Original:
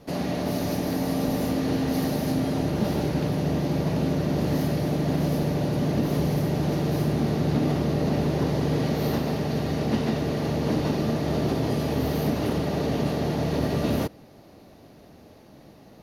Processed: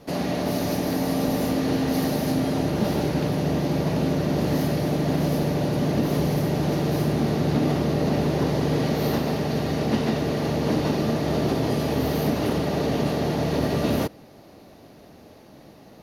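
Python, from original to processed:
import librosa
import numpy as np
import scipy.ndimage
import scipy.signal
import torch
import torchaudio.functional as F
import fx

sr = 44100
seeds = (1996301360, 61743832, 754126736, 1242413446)

y = fx.low_shelf(x, sr, hz=180.0, db=-4.0)
y = y * 10.0 ** (3.0 / 20.0)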